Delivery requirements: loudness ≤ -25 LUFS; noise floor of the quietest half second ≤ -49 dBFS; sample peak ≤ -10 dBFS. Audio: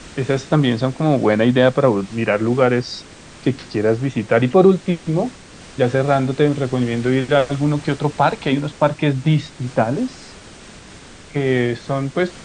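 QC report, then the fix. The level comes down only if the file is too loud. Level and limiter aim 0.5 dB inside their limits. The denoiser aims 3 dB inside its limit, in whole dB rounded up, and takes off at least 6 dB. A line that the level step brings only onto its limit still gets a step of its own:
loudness -18.5 LUFS: fail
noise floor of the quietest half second -40 dBFS: fail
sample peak -2.0 dBFS: fail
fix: noise reduction 6 dB, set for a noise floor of -40 dBFS; trim -7 dB; peak limiter -10.5 dBFS

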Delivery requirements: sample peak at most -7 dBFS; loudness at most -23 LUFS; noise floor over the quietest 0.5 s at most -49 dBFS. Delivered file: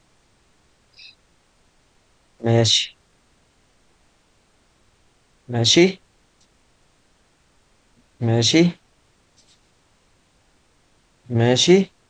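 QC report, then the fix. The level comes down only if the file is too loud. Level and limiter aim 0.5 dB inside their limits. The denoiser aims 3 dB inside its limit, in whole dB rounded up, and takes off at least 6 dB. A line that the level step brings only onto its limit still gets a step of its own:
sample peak -2.0 dBFS: fail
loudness -17.5 LUFS: fail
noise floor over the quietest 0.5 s -60 dBFS: pass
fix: trim -6 dB

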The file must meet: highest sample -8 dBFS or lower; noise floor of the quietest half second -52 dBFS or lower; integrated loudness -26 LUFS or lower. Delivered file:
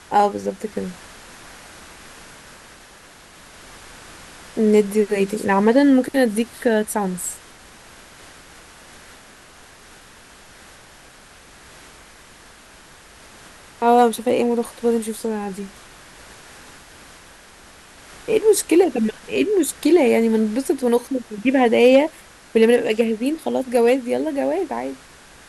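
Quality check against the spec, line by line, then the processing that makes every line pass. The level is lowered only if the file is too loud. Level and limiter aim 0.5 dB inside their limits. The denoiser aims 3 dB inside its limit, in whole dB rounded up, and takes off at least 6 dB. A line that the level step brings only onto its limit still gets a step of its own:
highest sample -3.0 dBFS: fail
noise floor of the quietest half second -46 dBFS: fail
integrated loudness -19.0 LUFS: fail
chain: trim -7.5 dB

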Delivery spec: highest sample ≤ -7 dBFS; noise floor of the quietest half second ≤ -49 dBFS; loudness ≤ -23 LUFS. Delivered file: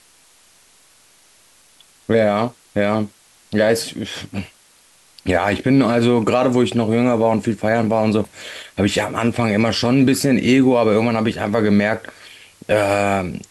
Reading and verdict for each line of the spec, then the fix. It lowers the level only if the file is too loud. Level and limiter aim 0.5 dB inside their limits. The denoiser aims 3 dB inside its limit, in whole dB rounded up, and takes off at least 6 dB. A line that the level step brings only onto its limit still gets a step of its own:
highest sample -5.5 dBFS: fail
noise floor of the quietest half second -53 dBFS: pass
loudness -17.5 LUFS: fail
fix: trim -6 dB

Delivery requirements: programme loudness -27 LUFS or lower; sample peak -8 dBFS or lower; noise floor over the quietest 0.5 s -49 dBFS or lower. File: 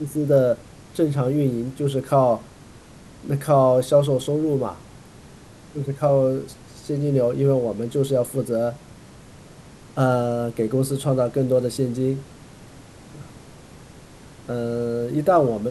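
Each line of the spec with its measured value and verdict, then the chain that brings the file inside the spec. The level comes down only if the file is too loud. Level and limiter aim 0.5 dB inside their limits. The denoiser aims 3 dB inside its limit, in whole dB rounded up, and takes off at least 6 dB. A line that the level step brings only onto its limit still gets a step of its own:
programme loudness -22.0 LUFS: fail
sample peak -6.0 dBFS: fail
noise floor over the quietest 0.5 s -45 dBFS: fail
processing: trim -5.5 dB

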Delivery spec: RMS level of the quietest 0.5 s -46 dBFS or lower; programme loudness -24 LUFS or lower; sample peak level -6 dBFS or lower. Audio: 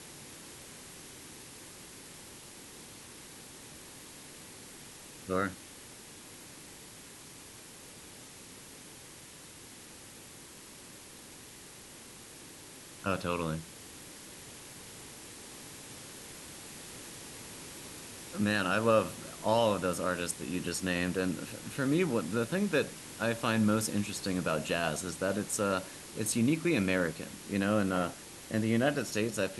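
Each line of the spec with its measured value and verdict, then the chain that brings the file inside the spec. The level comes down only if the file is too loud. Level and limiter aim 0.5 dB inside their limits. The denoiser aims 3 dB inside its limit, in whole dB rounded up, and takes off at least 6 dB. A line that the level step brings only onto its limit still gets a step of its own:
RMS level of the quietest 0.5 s -51 dBFS: pass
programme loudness -32.0 LUFS: pass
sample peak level -14.0 dBFS: pass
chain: none needed

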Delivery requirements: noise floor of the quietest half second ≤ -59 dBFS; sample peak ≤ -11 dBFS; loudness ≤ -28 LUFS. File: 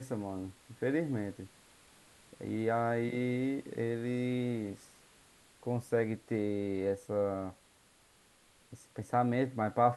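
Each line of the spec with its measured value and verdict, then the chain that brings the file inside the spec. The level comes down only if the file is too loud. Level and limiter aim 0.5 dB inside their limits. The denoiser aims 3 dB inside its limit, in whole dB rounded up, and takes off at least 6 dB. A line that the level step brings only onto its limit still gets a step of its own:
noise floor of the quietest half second -65 dBFS: pass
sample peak -14.0 dBFS: pass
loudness -34.5 LUFS: pass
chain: none needed

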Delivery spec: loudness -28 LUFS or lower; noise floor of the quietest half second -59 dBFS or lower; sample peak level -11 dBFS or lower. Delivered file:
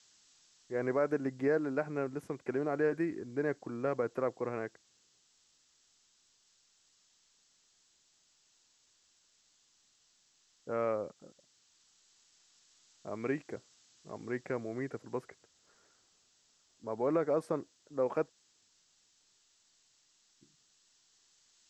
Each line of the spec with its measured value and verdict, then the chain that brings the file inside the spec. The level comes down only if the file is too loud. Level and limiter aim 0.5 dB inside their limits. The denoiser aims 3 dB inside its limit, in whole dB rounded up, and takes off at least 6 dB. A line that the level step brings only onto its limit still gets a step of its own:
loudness -35.5 LUFS: pass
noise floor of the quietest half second -71 dBFS: pass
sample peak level -19.0 dBFS: pass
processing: none needed

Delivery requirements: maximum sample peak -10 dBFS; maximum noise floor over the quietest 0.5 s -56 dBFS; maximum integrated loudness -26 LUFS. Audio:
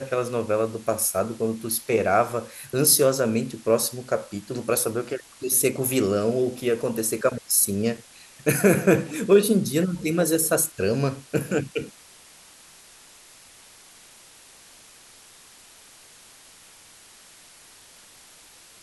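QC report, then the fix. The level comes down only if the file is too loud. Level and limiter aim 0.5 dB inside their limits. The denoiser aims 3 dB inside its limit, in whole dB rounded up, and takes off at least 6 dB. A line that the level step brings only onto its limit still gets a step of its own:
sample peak -4.5 dBFS: fail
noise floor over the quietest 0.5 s -50 dBFS: fail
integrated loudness -23.0 LUFS: fail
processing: noise reduction 6 dB, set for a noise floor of -50 dBFS; trim -3.5 dB; peak limiter -10.5 dBFS

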